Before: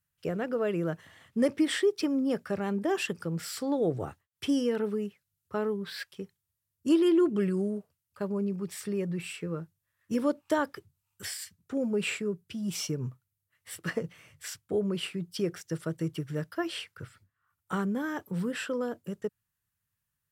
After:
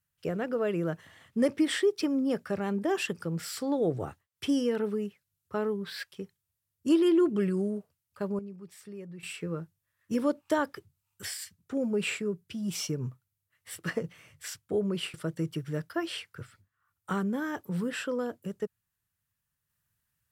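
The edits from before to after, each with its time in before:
0:08.39–0:09.23: clip gain −11.5 dB
0:15.14–0:15.76: remove

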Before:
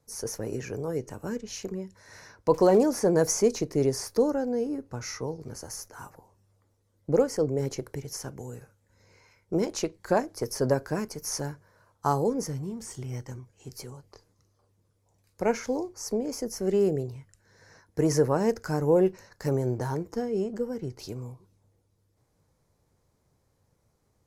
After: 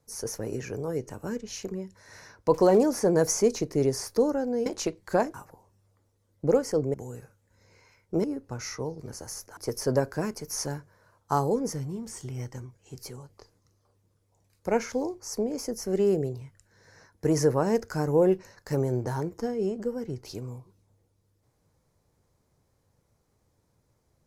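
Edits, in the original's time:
0:04.66–0:05.99: swap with 0:09.63–0:10.31
0:07.59–0:08.33: remove

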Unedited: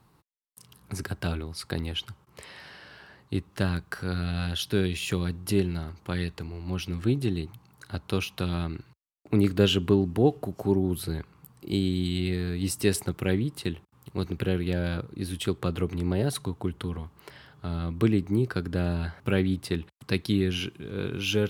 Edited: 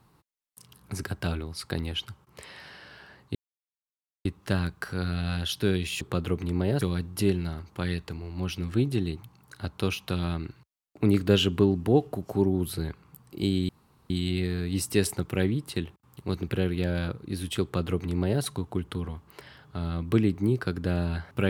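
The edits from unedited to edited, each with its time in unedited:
0:03.35: splice in silence 0.90 s
0:11.99: splice in room tone 0.41 s
0:15.52–0:16.32: duplicate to 0:05.11

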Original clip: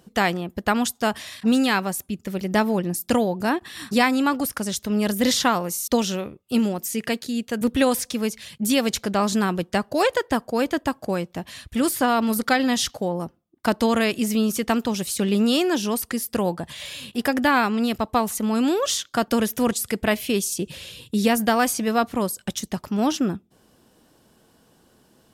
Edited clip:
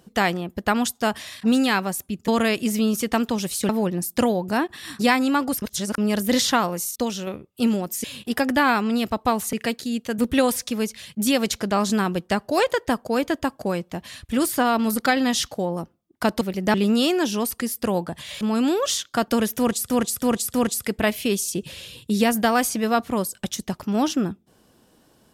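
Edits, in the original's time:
0:02.28–0:02.61: swap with 0:13.84–0:15.25
0:04.54–0:04.90: reverse
0:05.83–0:06.19: clip gain −4.5 dB
0:16.92–0:18.41: move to 0:06.96
0:19.58–0:19.90: repeat, 4 plays

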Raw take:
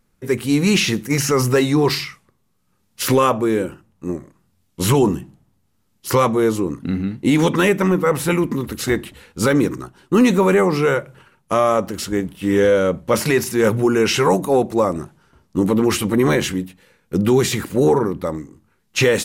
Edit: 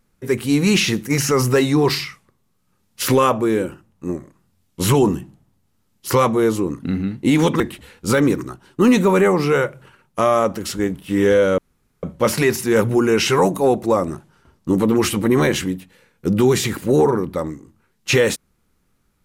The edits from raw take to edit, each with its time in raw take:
0:07.60–0:08.93: remove
0:12.91: splice in room tone 0.45 s

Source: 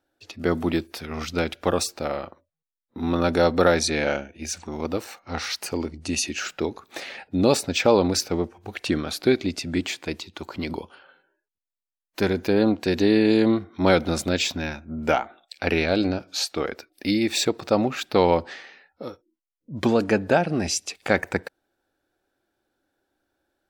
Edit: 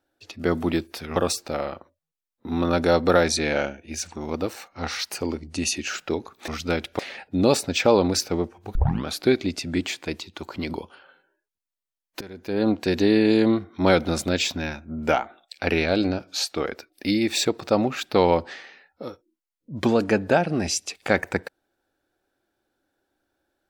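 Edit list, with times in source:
0:01.16–0:01.67: move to 0:06.99
0:08.75: tape start 0.30 s
0:12.21–0:12.70: fade in quadratic, from −19.5 dB

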